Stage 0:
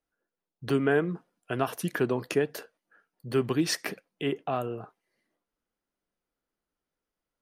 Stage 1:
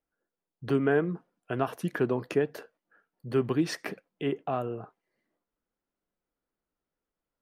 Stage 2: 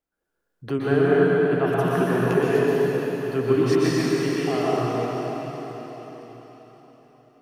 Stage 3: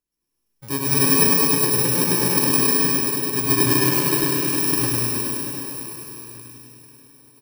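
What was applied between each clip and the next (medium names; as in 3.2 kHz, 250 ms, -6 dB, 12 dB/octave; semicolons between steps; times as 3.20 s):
treble shelf 3.1 kHz -11 dB
plate-style reverb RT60 4.6 s, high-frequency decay 1×, pre-delay 110 ms, DRR -8.5 dB
bit-reversed sample order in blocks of 64 samples; on a send: feedback delay 101 ms, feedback 57%, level -3 dB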